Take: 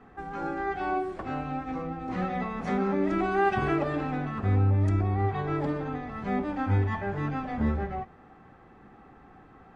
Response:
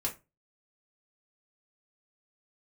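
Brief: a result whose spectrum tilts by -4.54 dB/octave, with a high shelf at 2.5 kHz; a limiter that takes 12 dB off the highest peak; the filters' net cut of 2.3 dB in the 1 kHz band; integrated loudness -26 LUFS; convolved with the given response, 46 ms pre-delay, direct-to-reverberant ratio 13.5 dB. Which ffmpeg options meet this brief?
-filter_complex "[0:a]equalizer=f=1000:t=o:g=-4.5,highshelf=f=2500:g=6.5,alimiter=level_in=1.41:limit=0.0631:level=0:latency=1,volume=0.708,asplit=2[s0][s1];[1:a]atrim=start_sample=2205,adelay=46[s2];[s1][s2]afir=irnorm=-1:irlink=0,volume=0.15[s3];[s0][s3]amix=inputs=2:normalize=0,volume=2.82"

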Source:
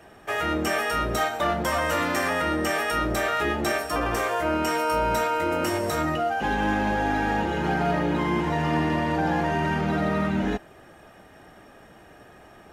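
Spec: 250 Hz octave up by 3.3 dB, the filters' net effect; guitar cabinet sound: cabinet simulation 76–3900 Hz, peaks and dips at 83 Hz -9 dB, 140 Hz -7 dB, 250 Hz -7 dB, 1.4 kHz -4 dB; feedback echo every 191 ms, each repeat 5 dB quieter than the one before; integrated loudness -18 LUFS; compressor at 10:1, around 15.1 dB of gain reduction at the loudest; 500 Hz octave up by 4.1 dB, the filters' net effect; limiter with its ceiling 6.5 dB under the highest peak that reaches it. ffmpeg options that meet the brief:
-af "equalizer=f=250:t=o:g=7,equalizer=f=500:t=o:g=4,acompressor=threshold=0.0251:ratio=10,alimiter=level_in=1.68:limit=0.0631:level=0:latency=1,volume=0.596,highpass=76,equalizer=f=83:t=q:w=4:g=-9,equalizer=f=140:t=q:w=4:g=-7,equalizer=f=250:t=q:w=4:g=-7,equalizer=f=1400:t=q:w=4:g=-4,lowpass=f=3900:w=0.5412,lowpass=f=3900:w=1.3066,aecho=1:1:191|382|573|764|955|1146|1337:0.562|0.315|0.176|0.0988|0.0553|0.031|0.0173,volume=9.44"

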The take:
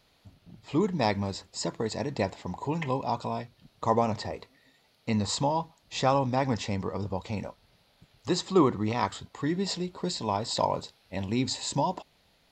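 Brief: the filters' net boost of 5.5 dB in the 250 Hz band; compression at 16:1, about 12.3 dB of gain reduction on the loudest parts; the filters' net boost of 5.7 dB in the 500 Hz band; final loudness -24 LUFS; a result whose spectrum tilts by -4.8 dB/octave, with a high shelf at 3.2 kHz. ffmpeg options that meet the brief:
-af "equalizer=f=250:t=o:g=5.5,equalizer=f=500:t=o:g=5.5,highshelf=f=3200:g=4.5,acompressor=threshold=0.0708:ratio=16,volume=2.11"

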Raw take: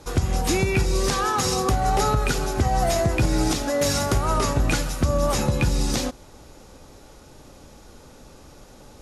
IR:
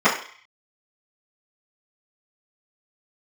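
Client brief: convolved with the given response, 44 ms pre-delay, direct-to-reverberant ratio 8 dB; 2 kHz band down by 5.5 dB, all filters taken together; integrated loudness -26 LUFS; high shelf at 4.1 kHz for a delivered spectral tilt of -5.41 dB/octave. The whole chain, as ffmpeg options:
-filter_complex "[0:a]equalizer=f=2000:t=o:g=-6.5,highshelf=f=4100:g=-4,asplit=2[s0][s1];[1:a]atrim=start_sample=2205,adelay=44[s2];[s1][s2]afir=irnorm=-1:irlink=0,volume=0.0299[s3];[s0][s3]amix=inputs=2:normalize=0,volume=0.708"

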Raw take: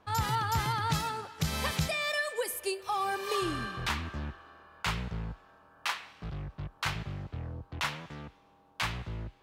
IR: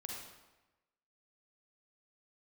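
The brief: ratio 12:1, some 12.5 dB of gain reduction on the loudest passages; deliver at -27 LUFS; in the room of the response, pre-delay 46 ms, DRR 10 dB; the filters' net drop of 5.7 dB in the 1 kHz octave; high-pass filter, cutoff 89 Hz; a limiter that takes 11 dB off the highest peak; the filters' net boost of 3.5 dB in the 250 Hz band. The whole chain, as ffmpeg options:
-filter_complex "[0:a]highpass=89,equalizer=f=250:t=o:g=6.5,equalizer=f=1000:t=o:g=-7.5,acompressor=threshold=0.0158:ratio=12,alimiter=level_in=2.66:limit=0.0631:level=0:latency=1,volume=0.376,asplit=2[s0][s1];[1:a]atrim=start_sample=2205,adelay=46[s2];[s1][s2]afir=irnorm=-1:irlink=0,volume=0.376[s3];[s0][s3]amix=inputs=2:normalize=0,volume=5.96"

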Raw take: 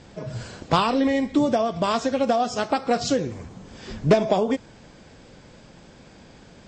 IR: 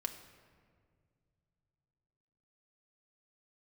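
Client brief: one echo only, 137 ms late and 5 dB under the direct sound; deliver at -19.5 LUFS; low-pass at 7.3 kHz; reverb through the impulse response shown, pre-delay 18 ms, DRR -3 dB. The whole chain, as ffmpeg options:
-filter_complex "[0:a]lowpass=7300,aecho=1:1:137:0.562,asplit=2[s0][s1];[1:a]atrim=start_sample=2205,adelay=18[s2];[s1][s2]afir=irnorm=-1:irlink=0,volume=1.41[s3];[s0][s3]amix=inputs=2:normalize=0,volume=0.75"

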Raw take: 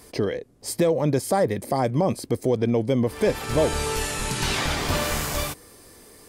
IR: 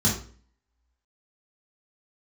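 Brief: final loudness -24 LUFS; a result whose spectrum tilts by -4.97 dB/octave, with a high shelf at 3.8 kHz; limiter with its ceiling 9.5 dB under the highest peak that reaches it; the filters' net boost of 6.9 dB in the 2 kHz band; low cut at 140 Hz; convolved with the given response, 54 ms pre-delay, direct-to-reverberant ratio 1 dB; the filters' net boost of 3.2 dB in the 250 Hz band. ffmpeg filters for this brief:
-filter_complex "[0:a]highpass=140,equalizer=f=250:t=o:g=4.5,equalizer=f=2000:t=o:g=7.5,highshelf=f=3800:g=3.5,alimiter=limit=0.15:level=0:latency=1,asplit=2[s0][s1];[1:a]atrim=start_sample=2205,adelay=54[s2];[s1][s2]afir=irnorm=-1:irlink=0,volume=0.224[s3];[s0][s3]amix=inputs=2:normalize=0,volume=0.596"

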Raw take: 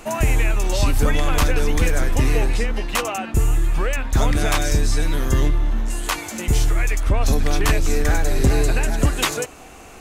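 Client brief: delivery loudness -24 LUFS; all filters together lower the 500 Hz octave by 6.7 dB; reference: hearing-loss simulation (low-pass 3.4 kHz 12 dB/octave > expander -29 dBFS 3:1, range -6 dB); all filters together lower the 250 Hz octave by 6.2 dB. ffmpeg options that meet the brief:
-af "lowpass=3400,equalizer=f=250:t=o:g=-6.5,equalizer=f=500:t=o:g=-6.5,agate=range=0.501:threshold=0.0355:ratio=3,volume=0.891"

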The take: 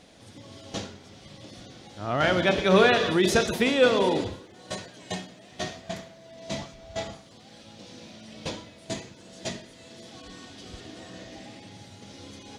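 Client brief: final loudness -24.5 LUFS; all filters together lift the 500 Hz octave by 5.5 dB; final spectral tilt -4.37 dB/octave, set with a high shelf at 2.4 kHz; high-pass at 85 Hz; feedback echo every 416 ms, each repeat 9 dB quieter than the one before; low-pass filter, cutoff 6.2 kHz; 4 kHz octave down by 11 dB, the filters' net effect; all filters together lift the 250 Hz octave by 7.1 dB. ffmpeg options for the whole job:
-af "highpass=85,lowpass=6200,equalizer=f=250:t=o:g=8.5,equalizer=f=500:t=o:g=4.5,highshelf=f=2400:g=-6,equalizer=f=4000:t=o:g=-8.5,aecho=1:1:416|832|1248|1664:0.355|0.124|0.0435|0.0152,volume=0.631"

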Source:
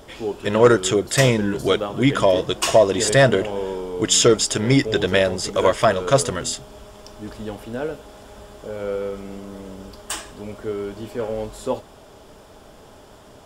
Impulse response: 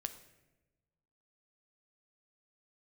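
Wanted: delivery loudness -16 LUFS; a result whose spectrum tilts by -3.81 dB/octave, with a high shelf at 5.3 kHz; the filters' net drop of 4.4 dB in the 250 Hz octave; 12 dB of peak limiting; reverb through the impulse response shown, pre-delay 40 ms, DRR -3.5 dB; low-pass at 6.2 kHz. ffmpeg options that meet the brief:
-filter_complex "[0:a]lowpass=6200,equalizer=f=250:t=o:g=-6,highshelf=f=5300:g=5.5,alimiter=limit=0.178:level=0:latency=1,asplit=2[s0][s1];[1:a]atrim=start_sample=2205,adelay=40[s2];[s1][s2]afir=irnorm=-1:irlink=0,volume=1.78[s3];[s0][s3]amix=inputs=2:normalize=0,volume=1.78"

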